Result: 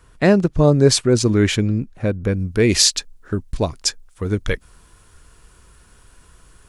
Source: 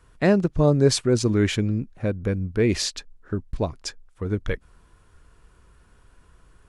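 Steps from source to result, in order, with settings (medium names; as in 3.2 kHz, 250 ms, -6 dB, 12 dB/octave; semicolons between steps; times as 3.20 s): treble shelf 3.6 kHz +3 dB, from 2.39 s +12 dB; trim +4.5 dB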